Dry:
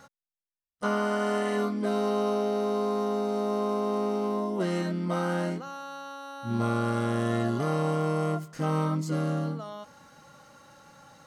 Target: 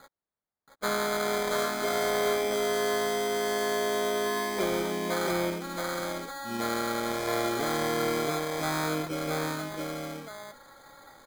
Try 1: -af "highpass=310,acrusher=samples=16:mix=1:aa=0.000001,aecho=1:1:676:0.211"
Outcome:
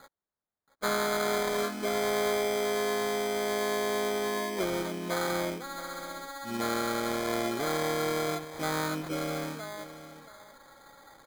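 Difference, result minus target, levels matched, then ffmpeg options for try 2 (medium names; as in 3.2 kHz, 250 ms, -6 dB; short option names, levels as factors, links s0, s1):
echo-to-direct -11 dB
-af "highpass=310,acrusher=samples=16:mix=1:aa=0.000001,aecho=1:1:676:0.75"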